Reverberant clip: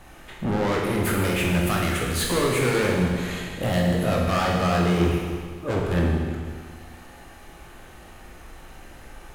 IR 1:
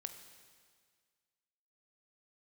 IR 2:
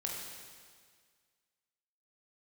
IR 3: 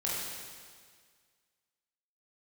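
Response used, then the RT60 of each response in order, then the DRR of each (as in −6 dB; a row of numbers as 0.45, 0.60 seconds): 2; 1.8, 1.8, 1.8 seconds; 7.0, −2.0, −6.5 decibels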